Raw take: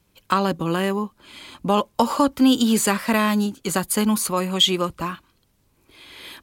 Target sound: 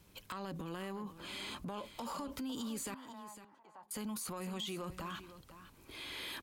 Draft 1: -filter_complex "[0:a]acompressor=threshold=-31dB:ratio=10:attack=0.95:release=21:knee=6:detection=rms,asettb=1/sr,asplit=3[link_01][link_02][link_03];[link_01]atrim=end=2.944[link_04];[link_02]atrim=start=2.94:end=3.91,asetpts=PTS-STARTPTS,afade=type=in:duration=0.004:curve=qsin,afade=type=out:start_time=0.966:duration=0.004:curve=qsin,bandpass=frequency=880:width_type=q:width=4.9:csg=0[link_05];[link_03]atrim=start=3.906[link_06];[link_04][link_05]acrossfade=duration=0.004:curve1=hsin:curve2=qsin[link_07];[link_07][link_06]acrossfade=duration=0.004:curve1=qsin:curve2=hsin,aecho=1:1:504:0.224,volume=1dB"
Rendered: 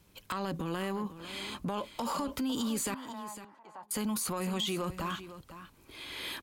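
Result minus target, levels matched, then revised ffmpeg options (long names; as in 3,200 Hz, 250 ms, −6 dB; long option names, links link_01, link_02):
downward compressor: peak gain reduction −8 dB
-filter_complex "[0:a]acompressor=threshold=-40dB:ratio=10:attack=0.95:release=21:knee=6:detection=rms,asettb=1/sr,asplit=3[link_01][link_02][link_03];[link_01]atrim=end=2.944[link_04];[link_02]atrim=start=2.94:end=3.91,asetpts=PTS-STARTPTS,afade=type=in:duration=0.004:curve=qsin,afade=type=out:start_time=0.966:duration=0.004:curve=qsin,bandpass=frequency=880:width_type=q:width=4.9:csg=0[link_05];[link_03]atrim=start=3.906[link_06];[link_04][link_05]acrossfade=duration=0.004:curve1=hsin:curve2=qsin[link_07];[link_07][link_06]acrossfade=duration=0.004:curve1=qsin:curve2=hsin,aecho=1:1:504:0.224,volume=1dB"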